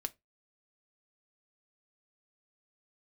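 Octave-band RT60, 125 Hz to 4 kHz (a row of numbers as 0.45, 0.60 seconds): 0.30, 0.20, 0.20, 0.20, 0.20, 0.15 seconds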